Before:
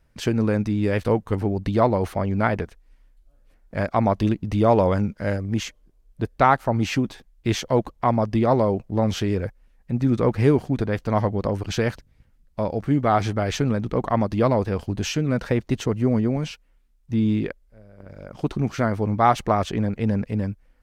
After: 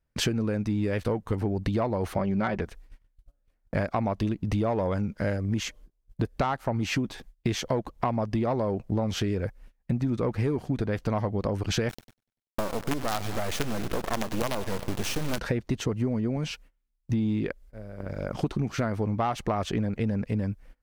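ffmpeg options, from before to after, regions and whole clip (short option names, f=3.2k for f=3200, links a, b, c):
-filter_complex "[0:a]asettb=1/sr,asplit=3[a][b][c];[a]atrim=end=2.174[d];[b]atrim=start=2.17:end=2.61,asetpts=PTS-STARTPTS,afade=t=in:d=0.004:c=qsin,afade=t=out:st=0.436:d=0.004:c=qsin,lowpass=6.8k,aecho=1:1:5.3:0.51,atrim=end_sample=19404[e];[c]atrim=start=2.606[f];[d][e]acrossfade=d=0.004:c1=hsin:c2=qsin[g];[g][f]acrossfade=d=0.004:c1=qsin:c2=hsin,asettb=1/sr,asplit=3[h][i][j];[h]atrim=end=11.894[k];[i]atrim=start=11.89:end=15.39,asetpts=PTS-STARTPTS,afade=t=in:d=0.004:c=qsin,afade=t=out:st=3.496:d=0.004:c=qsin,acrusher=bits=3:dc=4:mix=0:aa=0.000001,aecho=1:1:97|194|291|388|485:0.1|0.058|0.0336|0.0195|0.0113,atrim=end_sample=154350[l];[j]atrim=start=15.386[m];[k][l]acrossfade=d=0.004:c1=hsin:c2=qsin[n];[n][m]acrossfade=d=0.004:c1=qsin:c2=hsin,acontrast=87,agate=range=-23dB:threshold=-43dB:ratio=16:detection=peak,acompressor=threshold=-24dB:ratio=10"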